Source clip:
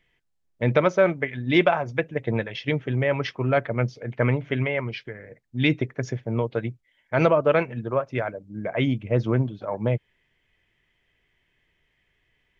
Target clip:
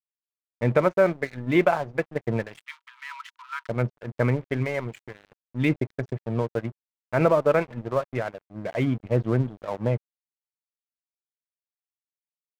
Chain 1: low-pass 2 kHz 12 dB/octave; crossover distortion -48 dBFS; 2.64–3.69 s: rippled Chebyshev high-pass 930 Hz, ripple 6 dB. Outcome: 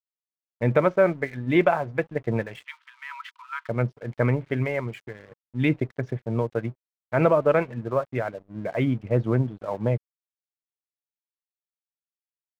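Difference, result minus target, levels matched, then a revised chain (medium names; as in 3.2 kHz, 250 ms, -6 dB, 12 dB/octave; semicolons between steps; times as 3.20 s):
crossover distortion: distortion -9 dB
low-pass 2 kHz 12 dB/octave; crossover distortion -38.5 dBFS; 2.64–3.69 s: rippled Chebyshev high-pass 930 Hz, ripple 6 dB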